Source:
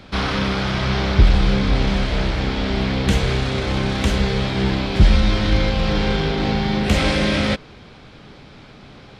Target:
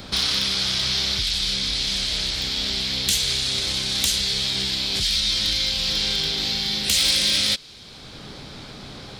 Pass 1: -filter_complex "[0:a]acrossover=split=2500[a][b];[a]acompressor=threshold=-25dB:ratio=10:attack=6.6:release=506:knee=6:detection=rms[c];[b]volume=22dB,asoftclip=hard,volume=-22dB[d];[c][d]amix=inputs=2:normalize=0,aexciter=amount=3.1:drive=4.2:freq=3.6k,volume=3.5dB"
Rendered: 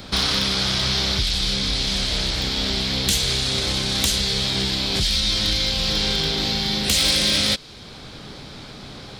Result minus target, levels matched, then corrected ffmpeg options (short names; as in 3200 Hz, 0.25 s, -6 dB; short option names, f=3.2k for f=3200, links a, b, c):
compressor: peak gain reduction -7.5 dB
-filter_complex "[0:a]acrossover=split=2500[a][b];[a]acompressor=threshold=-33.5dB:ratio=10:attack=6.6:release=506:knee=6:detection=rms[c];[b]volume=22dB,asoftclip=hard,volume=-22dB[d];[c][d]amix=inputs=2:normalize=0,aexciter=amount=3.1:drive=4.2:freq=3.6k,volume=3.5dB"